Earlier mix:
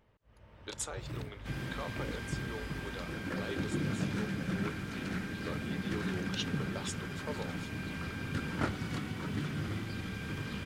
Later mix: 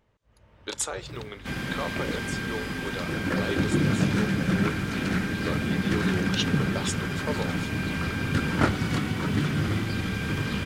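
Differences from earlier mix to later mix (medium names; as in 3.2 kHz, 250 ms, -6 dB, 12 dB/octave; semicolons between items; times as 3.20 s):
speech +9.0 dB; second sound +10.5 dB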